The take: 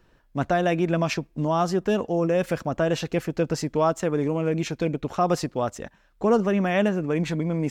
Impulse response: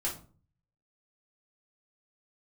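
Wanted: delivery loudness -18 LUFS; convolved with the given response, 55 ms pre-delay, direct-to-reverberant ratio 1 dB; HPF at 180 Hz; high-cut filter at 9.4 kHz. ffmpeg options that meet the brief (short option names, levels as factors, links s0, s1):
-filter_complex "[0:a]highpass=180,lowpass=9400,asplit=2[s0][s1];[1:a]atrim=start_sample=2205,adelay=55[s2];[s1][s2]afir=irnorm=-1:irlink=0,volume=0.562[s3];[s0][s3]amix=inputs=2:normalize=0,volume=1.68"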